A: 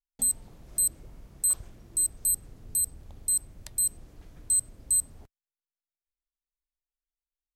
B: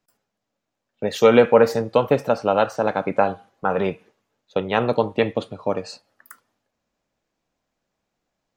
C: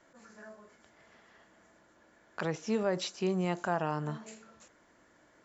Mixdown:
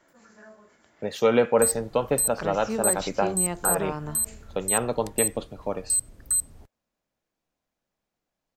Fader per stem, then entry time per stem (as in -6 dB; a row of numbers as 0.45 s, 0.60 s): +0.5 dB, -6.5 dB, +1.0 dB; 1.40 s, 0.00 s, 0.00 s